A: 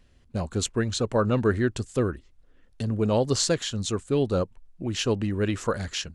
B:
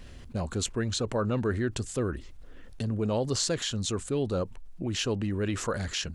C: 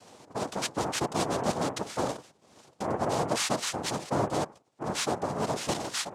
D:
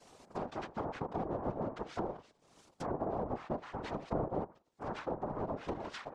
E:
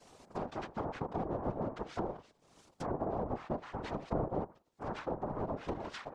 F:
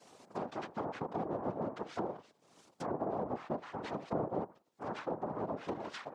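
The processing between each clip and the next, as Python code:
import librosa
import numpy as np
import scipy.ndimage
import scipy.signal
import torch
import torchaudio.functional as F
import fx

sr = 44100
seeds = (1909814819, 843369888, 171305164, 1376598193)

y1 = fx.env_flatten(x, sr, amount_pct=50)
y1 = y1 * librosa.db_to_amplitude(-7.0)
y2 = fx.hum_notches(y1, sr, base_hz=50, count=5)
y2 = fx.noise_vocoder(y2, sr, seeds[0], bands=2)
y3 = fx.whisperise(y2, sr, seeds[1])
y3 = fx.env_lowpass_down(y3, sr, base_hz=860.0, full_db=-26.0)
y3 = y3 * librosa.db_to_amplitude(-6.5)
y4 = fx.low_shelf(y3, sr, hz=130.0, db=3.5)
y5 = scipy.signal.sosfilt(scipy.signal.butter(2, 150.0, 'highpass', fs=sr, output='sos'), y4)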